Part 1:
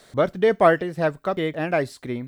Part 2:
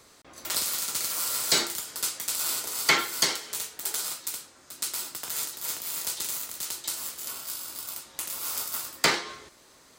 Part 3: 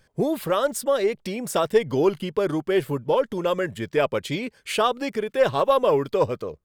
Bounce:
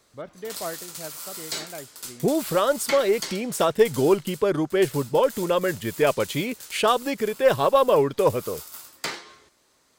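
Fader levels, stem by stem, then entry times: -17.0 dB, -8.0 dB, +1.0 dB; 0.00 s, 0.00 s, 2.05 s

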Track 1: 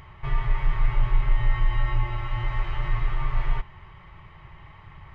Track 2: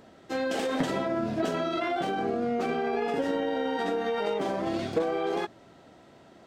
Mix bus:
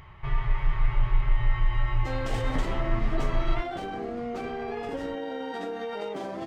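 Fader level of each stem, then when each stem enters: -2.0 dB, -5.0 dB; 0.00 s, 1.75 s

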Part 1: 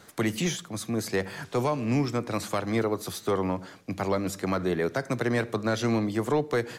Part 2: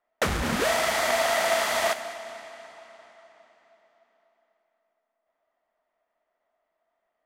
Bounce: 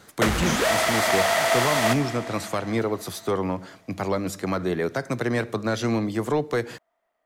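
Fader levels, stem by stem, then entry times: +1.5 dB, +2.5 dB; 0.00 s, 0.00 s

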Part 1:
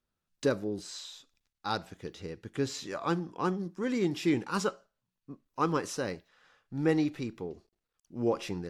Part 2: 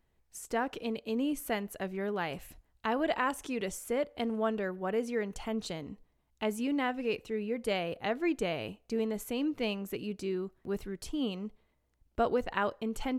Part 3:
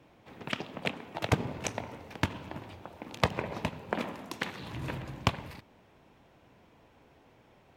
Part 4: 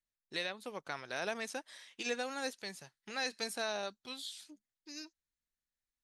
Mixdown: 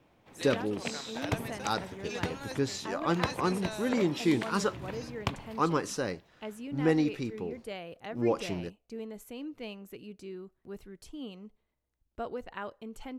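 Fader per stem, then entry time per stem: +1.0 dB, -8.5 dB, -5.0 dB, -4.0 dB; 0.00 s, 0.00 s, 0.00 s, 0.05 s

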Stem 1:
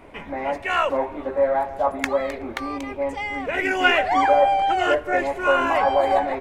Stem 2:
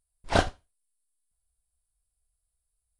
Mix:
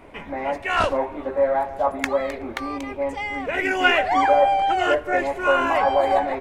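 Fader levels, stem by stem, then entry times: 0.0 dB, -5.0 dB; 0.00 s, 0.45 s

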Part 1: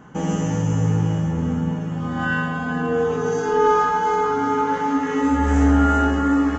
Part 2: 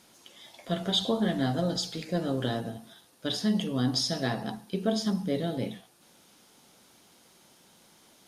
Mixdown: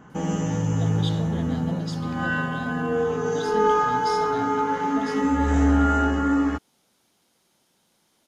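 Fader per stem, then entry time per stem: -3.0 dB, -8.0 dB; 0.00 s, 0.10 s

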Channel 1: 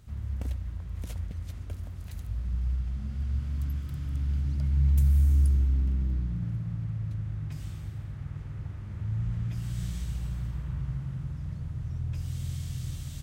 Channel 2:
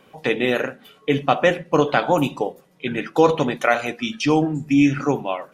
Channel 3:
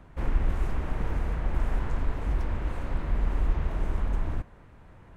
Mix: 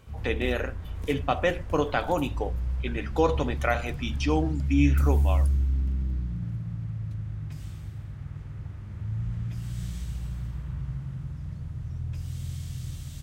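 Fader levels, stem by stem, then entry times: -0.5 dB, -8.0 dB, -15.0 dB; 0.00 s, 0.00 s, 0.00 s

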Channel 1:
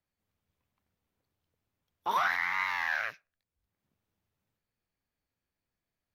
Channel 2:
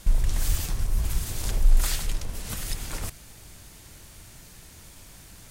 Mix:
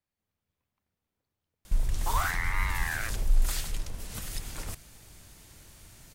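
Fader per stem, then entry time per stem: -2.5 dB, -5.0 dB; 0.00 s, 1.65 s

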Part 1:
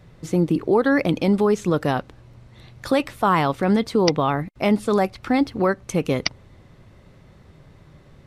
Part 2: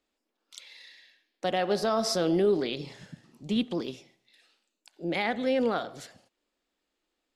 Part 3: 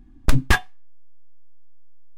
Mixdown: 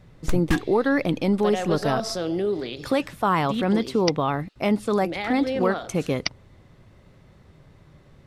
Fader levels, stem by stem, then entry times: -3.0 dB, -1.0 dB, -9.0 dB; 0.00 s, 0.00 s, 0.00 s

